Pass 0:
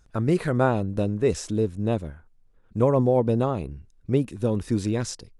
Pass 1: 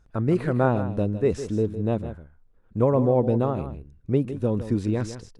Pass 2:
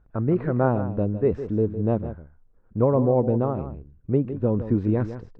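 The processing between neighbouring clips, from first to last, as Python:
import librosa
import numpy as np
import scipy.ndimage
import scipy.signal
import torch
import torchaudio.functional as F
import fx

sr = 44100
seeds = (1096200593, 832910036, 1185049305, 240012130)

y1 = fx.high_shelf(x, sr, hz=3100.0, db=-11.0)
y1 = y1 + 10.0 ** (-11.5 / 20.0) * np.pad(y1, (int(158 * sr / 1000.0), 0))[:len(y1)]
y2 = scipy.signal.sosfilt(scipy.signal.butter(2, 1500.0, 'lowpass', fs=sr, output='sos'), y1)
y2 = fx.rider(y2, sr, range_db=10, speed_s=2.0)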